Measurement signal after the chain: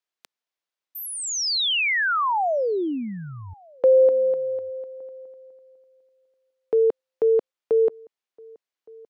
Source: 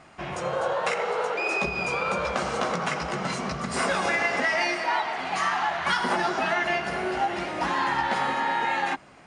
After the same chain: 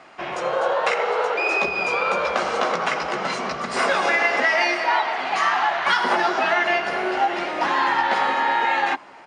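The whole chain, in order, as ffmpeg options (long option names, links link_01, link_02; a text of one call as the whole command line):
ffmpeg -i in.wav -filter_complex "[0:a]acrossover=split=270 6000:gain=0.158 1 0.251[link_01][link_02][link_03];[link_01][link_02][link_03]amix=inputs=3:normalize=0,asplit=2[link_04][link_05];[link_05]adelay=1166,volume=-26dB,highshelf=frequency=4000:gain=-26.2[link_06];[link_04][link_06]amix=inputs=2:normalize=0,volume=5.5dB" out.wav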